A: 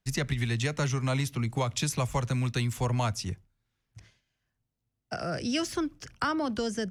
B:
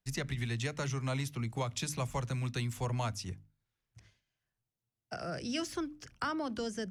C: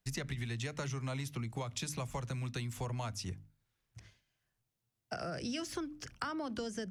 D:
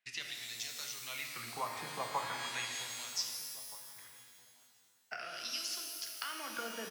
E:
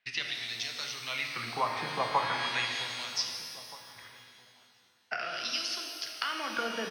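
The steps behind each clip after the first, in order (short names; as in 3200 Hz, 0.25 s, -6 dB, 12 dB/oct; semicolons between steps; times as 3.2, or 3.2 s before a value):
notches 50/100/150/200/250/300 Hz; gain -6 dB
compressor 5:1, threshold -40 dBFS, peak gain reduction 10 dB; gain +4 dB
LFO band-pass sine 0.39 Hz 840–5200 Hz; outdoor echo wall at 270 m, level -20 dB; shimmer reverb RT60 2.1 s, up +12 st, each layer -2 dB, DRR 2 dB; gain +8 dB
polynomial smoothing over 15 samples; gain +8.5 dB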